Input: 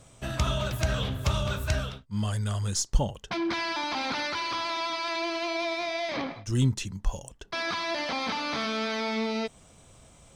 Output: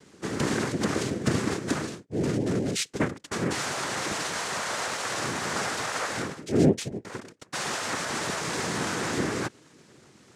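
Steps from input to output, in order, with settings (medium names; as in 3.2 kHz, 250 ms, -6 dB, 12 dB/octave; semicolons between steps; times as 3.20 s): bass shelf 170 Hz +6.5 dB; noise-vocoded speech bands 3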